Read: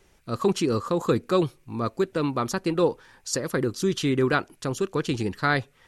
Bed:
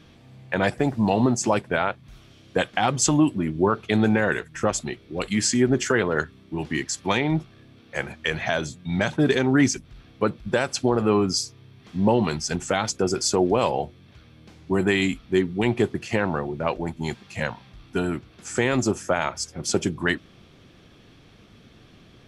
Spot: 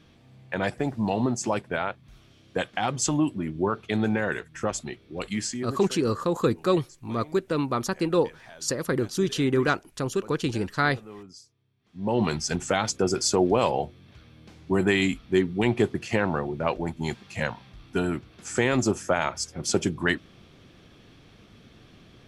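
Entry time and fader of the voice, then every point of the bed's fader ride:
5.35 s, −0.5 dB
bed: 0:05.33 −5 dB
0:06.03 −23.5 dB
0:11.80 −23.5 dB
0:12.21 −1 dB

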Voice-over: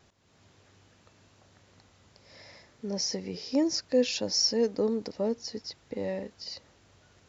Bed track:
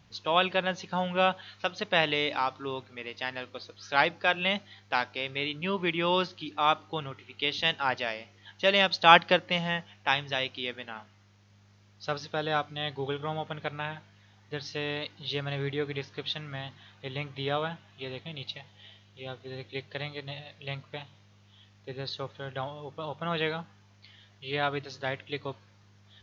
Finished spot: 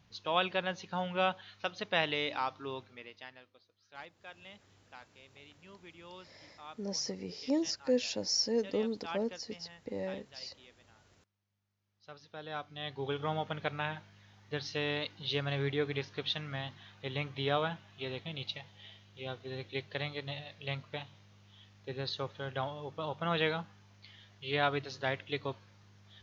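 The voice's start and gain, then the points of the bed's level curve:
3.95 s, −5.0 dB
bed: 0:02.86 −5.5 dB
0:03.64 −24.5 dB
0:11.75 −24.5 dB
0:13.23 −1 dB

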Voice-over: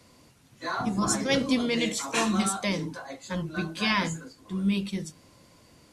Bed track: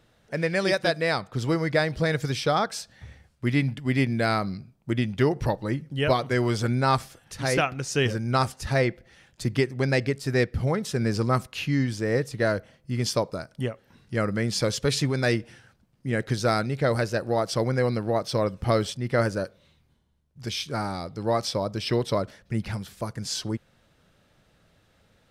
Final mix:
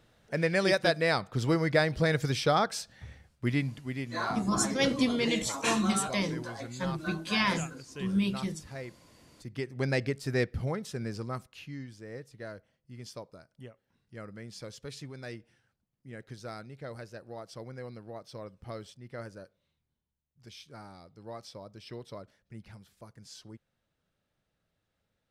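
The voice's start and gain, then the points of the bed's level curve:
3.50 s, −2.0 dB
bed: 0:03.35 −2 dB
0:04.32 −18.5 dB
0:09.40 −18.5 dB
0:09.83 −5.5 dB
0:10.46 −5.5 dB
0:11.91 −18.5 dB

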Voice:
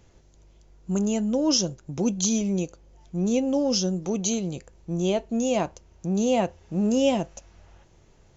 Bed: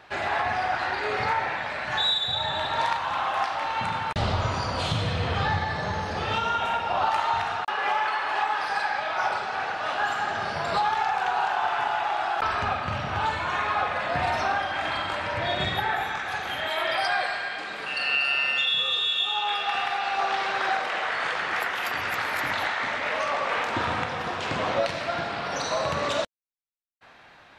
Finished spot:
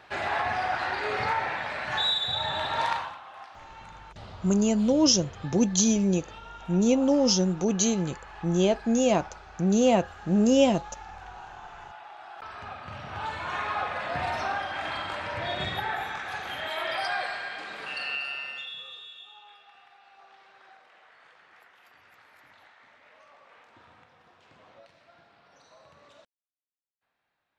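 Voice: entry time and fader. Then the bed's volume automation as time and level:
3.55 s, +1.5 dB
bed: 0:02.99 −2 dB
0:03.20 −19 dB
0:12.17 −19 dB
0:13.55 −4.5 dB
0:17.91 −4.5 dB
0:19.74 −29 dB

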